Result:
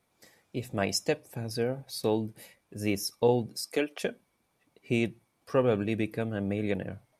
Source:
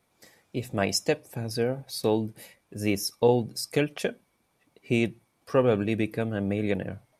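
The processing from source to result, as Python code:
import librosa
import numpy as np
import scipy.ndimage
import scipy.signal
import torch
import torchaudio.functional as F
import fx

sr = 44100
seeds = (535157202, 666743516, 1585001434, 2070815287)

y = fx.highpass(x, sr, hz=fx.line((3.47, 130.0), (4.01, 340.0)), slope=24, at=(3.47, 4.01), fade=0.02)
y = y * librosa.db_to_amplitude(-3.0)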